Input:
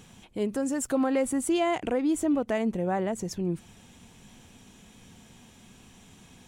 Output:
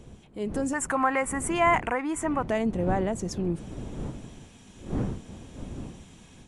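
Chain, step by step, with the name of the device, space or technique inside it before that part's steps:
0:00.73–0:02.44: octave-band graphic EQ 250/500/1,000/2,000/4,000/8,000 Hz −6/−6/+12/+10/−11/+3 dB
smartphone video outdoors (wind on the microphone 230 Hz −38 dBFS; automatic gain control gain up to 8 dB; level −7 dB; AAC 96 kbit/s 24,000 Hz)

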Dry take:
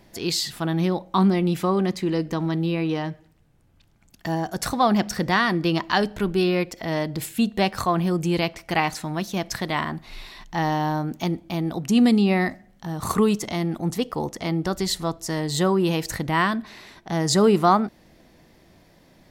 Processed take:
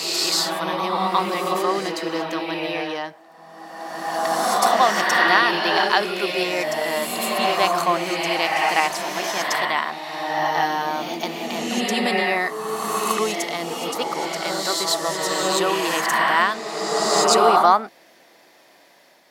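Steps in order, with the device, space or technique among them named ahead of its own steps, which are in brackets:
ghost voice (reversed playback; convolution reverb RT60 2.2 s, pre-delay 93 ms, DRR −1.5 dB; reversed playback; high-pass filter 570 Hz 12 dB per octave)
level +3.5 dB

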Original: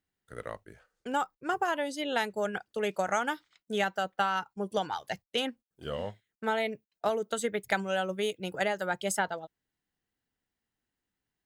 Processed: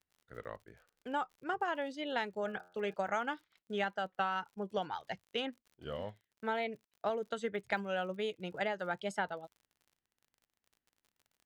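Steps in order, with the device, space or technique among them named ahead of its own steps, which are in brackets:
lo-fi chain (low-pass filter 3,900 Hz 12 dB per octave; tape wow and flutter; surface crackle 52 per second −47 dBFS)
0:02.41–0:02.94: hum removal 89.32 Hz, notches 19
level −5.5 dB

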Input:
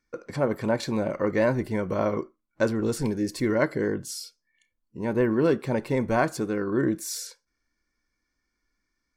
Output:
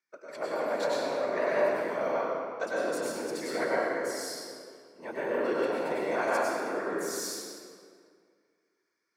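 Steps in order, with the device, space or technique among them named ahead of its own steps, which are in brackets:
whispering ghost (random phases in short frames; high-pass filter 520 Hz 12 dB per octave; convolution reverb RT60 2.1 s, pre-delay 90 ms, DRR −6.5 dB)
level −7.5 dB

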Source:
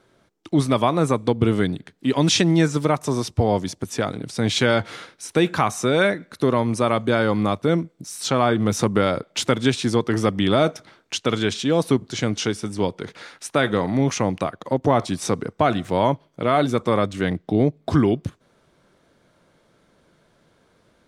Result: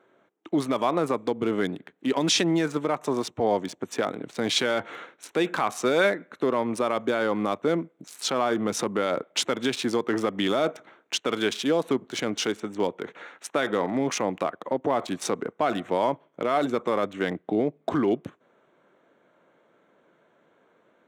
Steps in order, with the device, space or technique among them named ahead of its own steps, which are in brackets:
adaptive Wiener filter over 9 samples
clipper into limiter (hard clipping −5.5 dBFS, distortion −45 dB; brickwall limiter −11.5 dBFS, peak gain reduction 6 dB)
high-pass filter 290 Hz 12 dB per octave

